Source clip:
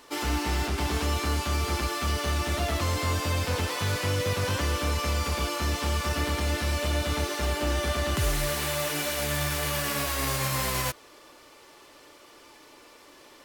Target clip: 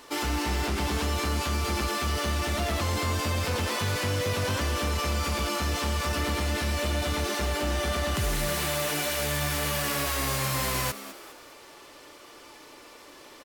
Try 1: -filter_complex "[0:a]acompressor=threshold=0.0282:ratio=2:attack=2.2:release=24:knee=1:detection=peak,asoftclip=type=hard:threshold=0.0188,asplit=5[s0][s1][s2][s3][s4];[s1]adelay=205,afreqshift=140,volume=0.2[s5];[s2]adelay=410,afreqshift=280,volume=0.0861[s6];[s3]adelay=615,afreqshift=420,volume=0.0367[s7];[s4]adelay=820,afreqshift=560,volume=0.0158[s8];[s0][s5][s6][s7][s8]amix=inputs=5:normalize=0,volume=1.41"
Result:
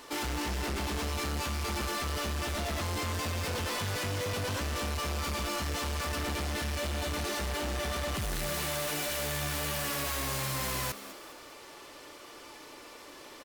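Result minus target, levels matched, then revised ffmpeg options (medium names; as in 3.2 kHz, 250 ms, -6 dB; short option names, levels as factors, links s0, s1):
hard clipper: distortion +33 dB
-filter_complex "[0:a]acompressor=threshold=0.0282:ratio=2:attack=2.2:release=24:knee=1:detection=peak,asoftclip=type=hard:threshold=0.075,asplit=5[s0][s1][s2][s3][s4];[s1]adelay=205,afreqshift=140,volume=0.2[s5];[s2]adelay=410,afreqshift=280,volume=0.0861[s6];[s3]adelay=615,afreqshift=420,volume=0.0367[s7];[s4]adelay=820,afreqshift=560,volume=0.0158[s8];[s0][s5][s6][s7][s8]amix=inputs=5:normalize=0,volume=1.41"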